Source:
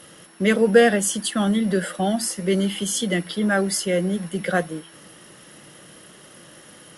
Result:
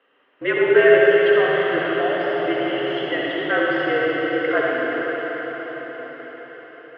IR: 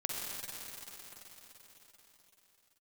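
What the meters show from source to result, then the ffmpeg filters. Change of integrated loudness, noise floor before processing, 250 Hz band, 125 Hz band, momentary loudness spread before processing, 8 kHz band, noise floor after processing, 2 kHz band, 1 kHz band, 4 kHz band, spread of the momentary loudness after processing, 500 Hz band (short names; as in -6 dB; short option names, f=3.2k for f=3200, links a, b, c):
+2.0 dB, -47 dBFS, -3.5 dB, -10.5 dB, 9 LU, under -40 dB, -61 dBFS, +6.5 dB, +3.5 dB, -1.0 dB, 19 LU, +5.0 dB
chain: -filter_complex "[0:a]highpass=f=410:t=q:w=0.5412,highpass=f=410:t=q:w=1.307,lowpass=f=2.9k:t=q:w=0.5176,lowpass=f=2.9k:t=q:w=0.7071,lowpass=f=2.9k:t=q:w=1.932,afreqshift=-56,agate=range=-13dB:threshold=-42dB:ratio=16:detection=peak[a];[1:a]atrim=start_sample=2205,asetrate=32634,aresample=44100[b];[a][b]afir=irnorm=-1:irlink=0"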